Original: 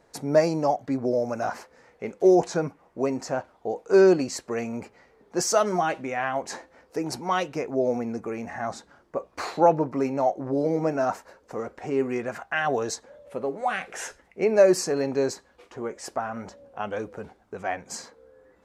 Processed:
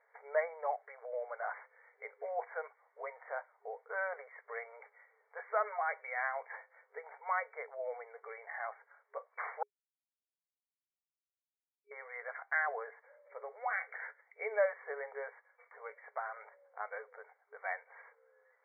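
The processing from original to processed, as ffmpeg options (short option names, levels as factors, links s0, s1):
-filter_complex "[0:a]asplit=3[s0][s1][s2];[s0]atrim=end=9.63,asetpts=PTS-STARTPTS,afade=t=out:st=9.626:d=0.004:c=hsin[s3];[s1]atrim=start=9.63:end=11.91,asetpts=PTS-STARTPTS,volume=0[s4];[s2]atrim=start=11.91,asetpts=PTS-STARTPTS,afade=t=in:d=0.004:c=hsin[s5];[s3][s4][s5]concat=n=3:v=0:a=1,aderivative,afftfilt=real='re*between(b*sr/4096,410,2300)':imag='im*between(b*sr/4096,410,2300)':win_size=4096:overlap=0.75,volume=2.51"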